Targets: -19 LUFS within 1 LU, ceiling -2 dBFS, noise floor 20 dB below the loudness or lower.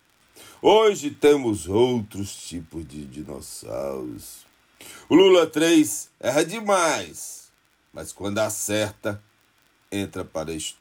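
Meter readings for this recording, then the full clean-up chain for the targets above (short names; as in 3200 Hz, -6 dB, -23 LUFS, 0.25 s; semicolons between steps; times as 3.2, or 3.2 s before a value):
ticks 41/s; loudness -22.0 LUFS; peak -6.5 dBFS; loudness target -19.0 LUFS
-> de-click; gain +3 dB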